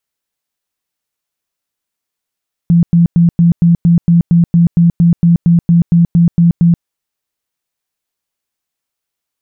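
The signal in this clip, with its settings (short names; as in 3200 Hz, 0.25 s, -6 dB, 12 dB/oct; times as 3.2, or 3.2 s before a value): tone bursts 170 Hz, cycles 22, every 0.23 s, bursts 18, -4.5 dBFS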